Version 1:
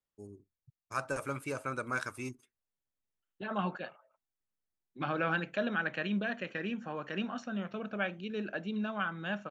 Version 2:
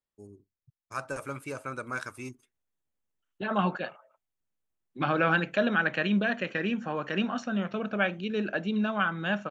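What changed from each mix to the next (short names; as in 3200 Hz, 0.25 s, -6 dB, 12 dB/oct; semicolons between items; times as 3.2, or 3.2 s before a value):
second voice +7.0 dB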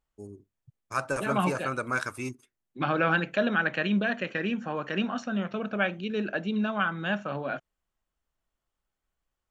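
first voice +5.5 dB; second voice: entry -2.20 s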